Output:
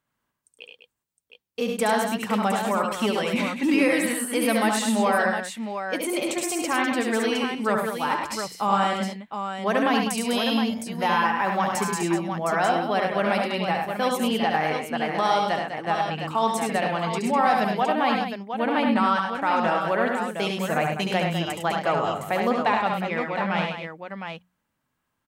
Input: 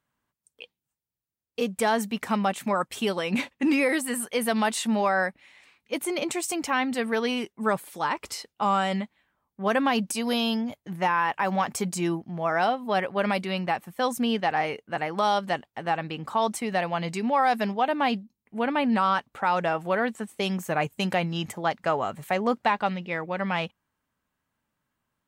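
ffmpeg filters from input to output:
-filter_complex "[0:a]bandreject=f=60:t=h:w=6,bandreject=f=120:t=h:w=6,bandreject=f=180:t=h:w=6,asplit=2[a][b];[b]aecho=0:1:71|103|201|712:0.596|0.473|0.355|0.447[c];[a][c]amix=inputs=2:normalize=0"

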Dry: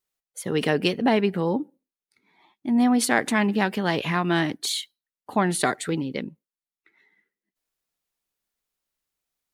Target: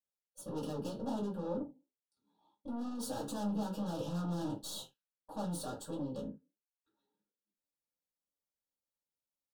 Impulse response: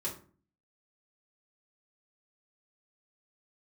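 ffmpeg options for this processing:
-filter_complex "[0:a]asettb=1/sr,asplit=3[a][b][c];[a]atrim=end=3.084[d];[b]atrim=start=3.08:end=5.42,asetpts=PTS-STARTPTS,afade=t=in:d=0.004:c=qsin,afade=t=out:st=2.336:d=0.004:c=qsin,aecho=1:1:6.2:0.95,atrim=end_sample=103194[e];[c]atrim=start=5.416[f];[d][e]acrossfade=d=0.004:c1=hsin:c2=qsin[g];[g][f]acrossfade=d=0.004:c1=qsin:c2=hsin,flanger=delay=4.1:depth=6.1:regen=-82:speed=1.5:shape=sinusoidal,aeval=exprs='(tanh(50.1*val(0)+0.8)-tanh(0.8))/50.1':c=same,asuperstop=centerf=2100:order=4:qfactor=0.95[h];[1:a]atrim=start_sample=2205,atrim=end_sample=6174,asetrate=66150,aresample=44100[i];[h][i]afir=irnorm=-1:irlink=0,volume=-2dB"

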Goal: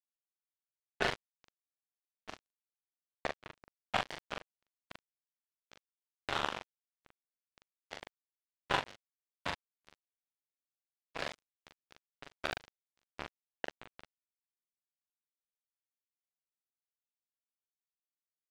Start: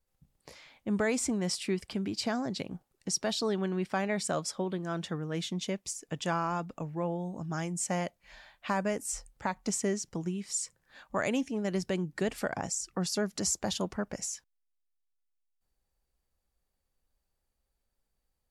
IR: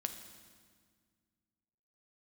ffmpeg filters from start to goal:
-filter_complex "[0:a]highpass=58,acrossover=split=450 2900:gain=0.126 1 0.0794[a][b][c];[a][b][c]amix=inputs=3:normalize=0,aresample=16000,aeval=exprs='sgn(val(0))*max(abs(val(0))-0.00237,0)':c=same,aresample=44100,afftfilt=real='hypot(re,im)*cos(2*PI*random(0))':imag='hypot(re,im)*sin(2*PI*random(1))':win_size=512:overlap=0.75,acrusher=bits=4:mix=0:aa=0.5,asplit=2[d][e];[e]adelay=41,volume=-3.5dB[f];[d][f]amix=inputs=2:normalize=0,volume=10.5dB"

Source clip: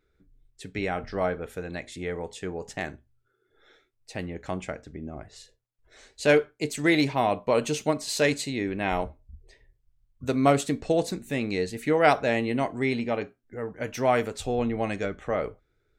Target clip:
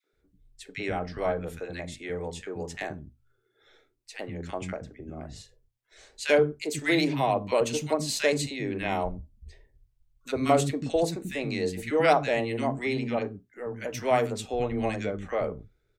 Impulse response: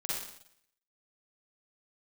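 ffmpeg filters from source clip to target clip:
-filter_complex "[0:a]acrossover=split=260|1400[a][b][c];[b]adelay=40[d];[a]adelay=130[e];[e][d][c]amix=inputs=3:normalize=0,adynamicequalizer=threshold=0.00398:dfrequency=1500:dqfactor=3.5:tfrequency=1500:tqfactor=3.5:attack=5:release=100:ratio=0.375:range=2:mode=cutabove:tftype=bell"

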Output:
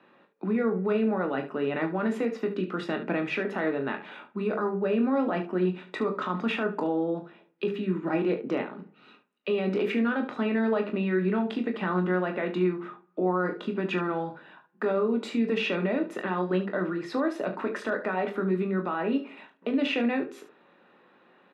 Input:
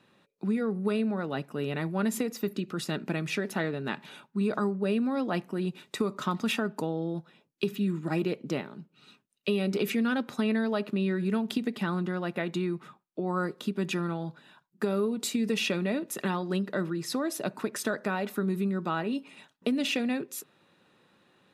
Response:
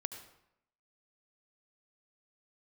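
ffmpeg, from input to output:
-filter_complex "[0:a]lowpass=8.4k,acrossover=split=210 2900:gain=0.0891 1 0.0708[a][b][c];[a][b][c]amix=inputs=3:normalize=0,bandreject=f=50:t=h:w=6,bandreject=f=100:t=h:w=6,bandreject=f=150:t=h:w=6,bandreject=f=200:t=h:w=6,bandreject=f=250:t=h:w=6,bandreject=f=300:t=h:w=6,bandreject=f=350:t=h:w=6,bandreject=f=400:t=h:w=6,bandreject=f=450:t=h:w=6,alimiter=level_in=2dB:limit=-24dB:level=0:latency=1:release=26,volume=-2dB,aecho=1:1:22|38|72:0.398|0.266|0.237,asplit=2[d][e];[1:a]atrim=start_sample=2205,lowpass=2.5k[f];[e][f]afir=irnorm=-1:irlink=0,volume=-14dB[g];[d][g]amix=inputs=2:normalize=0,volume=5dB"

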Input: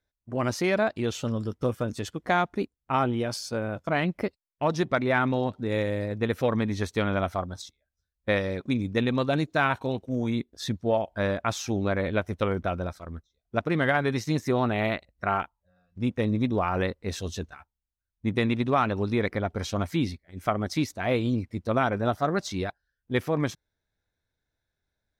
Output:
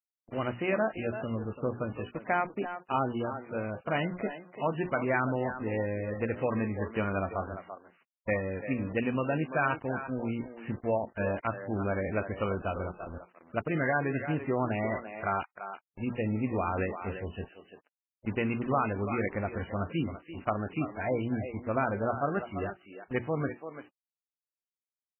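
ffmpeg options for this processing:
-filter_complex "[0:a]asplit=3[a][b][c];[a]afade=t=out:st=2.4:d=0.02[d];[b]highpass=170,afade=t=in:st=2.4:d=0.02,afade=t=out:st=2.92:d=0.02[e];[c]afade=t=in:st=2.92:d=0.02[f];[d][e][f]amix=inputs=3:normalize=0,bandreject=f=60:t=h:w=6,bandreject=f=120:t=h:w=6,bandreject=f=180:t=h:w=6,bandreject=f=240:t=h:w=6,bandreject=f=300:t=h:w=6,bandreject=f=360:t=h:w=6,bandreject=f=420:t=h:w=6,asplit=3[g][h][i];[g]afade=t=out:st=17.52:d=0.02[j];[h]acompressor=threshold=-44dB:ratio=20,afade=t=in:st=17.52:d=0.02,afade=t=out:st=18.26:d=0.02[k];[i]afade=t=in:st=18.26:d=0.02[l];[j][k][l]amix=inputs=3:normalize=0,aexciter=amount=4:drive=7.3:freq=3.3k,acrusher=bits=5:mix=0:aa=0.5,asplit=2[m][n];[n]adelay=340,highpass=300,lowpass=3.4k,asoftclip=type=hard:threshold=-16.5dB,volume=-9dB[o];[m][o]amix=inputs=2:normalize=0,volume=-4dB" -ar 12000 -c:a libmp3lame -b:a 8k

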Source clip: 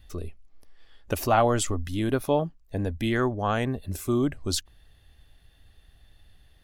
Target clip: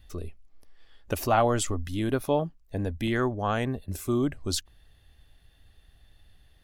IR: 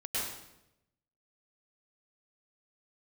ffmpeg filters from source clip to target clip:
-filter_complex "[0:a]asettb=1/sr,asplit=3[a][b][c];[a]atrim=end=3.074[d];[b]atrim=start=3.07:end=3.93,asetpts=PTS-STARTPTS,afade=t=in:d=0.004:c=qsin,afade=t=out:st=0.856:d=0.004:c=qsin,agate=range=-10dB:threshold=-36dB:ratio=16:detection=peak[e];[c]atrim=start=3.926[f];[d][e]acrossfade=d=0.004:c1=hsin:c2=qsin[g];[g][f]acrossfade=d=0.004:c1=qsin:c2=hsin,volume=-1.5dB"

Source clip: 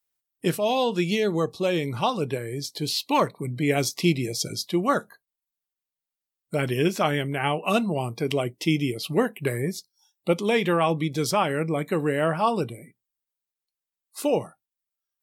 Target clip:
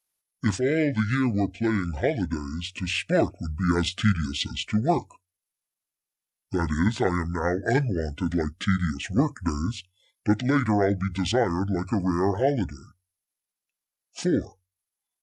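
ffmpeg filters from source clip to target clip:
-af "bandreject=f=50:t=h:w=6,bandreject=f=100:t=h:w=6,bandreject=f=150:t=h:w=6,asetrate=26990,aresample=44100,atempo=1.63392"

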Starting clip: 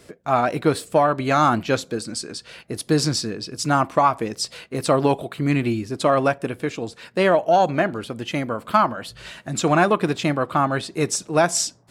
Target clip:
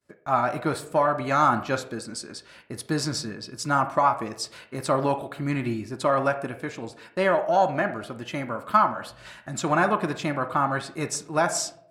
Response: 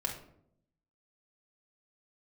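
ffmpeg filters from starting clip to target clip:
-filter_complex "[0:a]agate=range=-33dB:threshold=-38dB:ratio=3:detection=peak,asplit=2[a][b];[b]acrossover=split=510 2800:gain=0.2 1 0.126[c][d][e];[c][d][e]amix=inputs=3:normalize=0[f];[1:a]atrim=start_sample=2205[g];[f][g]afir=irnorm=-1:irlink=0,volume=-3.5dB[h];[a][h]amix=inputs=2:normalize=0,volume=-6dB"

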